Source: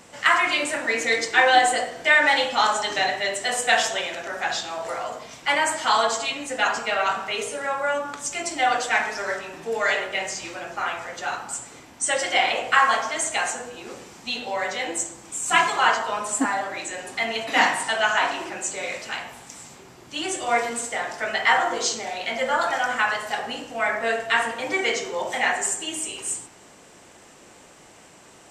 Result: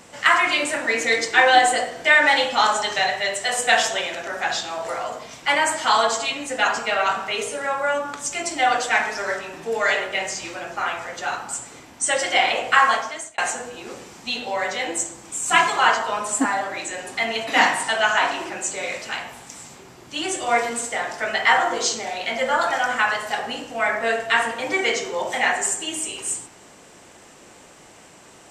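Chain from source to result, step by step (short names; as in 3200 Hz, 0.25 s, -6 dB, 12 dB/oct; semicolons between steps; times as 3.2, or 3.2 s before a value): 2.89–3.58 bell 290 Hz -12 dB 0.53 oct; 12.88–13.38 fade out; gain +2 dB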